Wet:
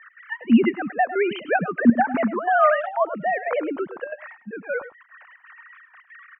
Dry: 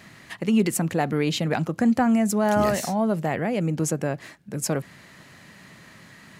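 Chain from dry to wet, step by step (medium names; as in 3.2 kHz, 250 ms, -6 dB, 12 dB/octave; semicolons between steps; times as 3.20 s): formants replaced by sine waves; low-pass 3 kHz 24 dB/octave; peaking EQ 1.3 kHz +13 dB 1.6 oct; trance gate "x.xxx.xxxxx." 182 bpm -12 dB; delay 103 ms -14 dB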